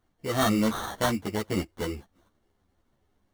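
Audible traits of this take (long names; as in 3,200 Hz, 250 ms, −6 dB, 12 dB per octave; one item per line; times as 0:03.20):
aliases and images of a low sample rate 2,500 Hz, jitter 0%
a shimmering, thickened sound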